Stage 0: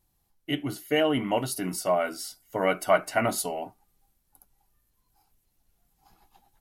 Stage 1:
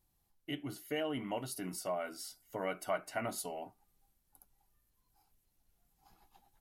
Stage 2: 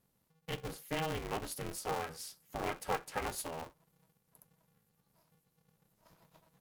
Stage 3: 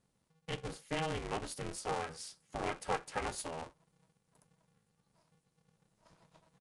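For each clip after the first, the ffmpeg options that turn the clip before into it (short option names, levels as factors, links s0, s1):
-af "acompressor=threshold=0.00794:ratio=1.5,volume=0.562"
-af "aeval=exprs='val(0)*sgn(sin(2*PI*160*n/s))':c=same"
-af "aresample=22050,aresample=44100"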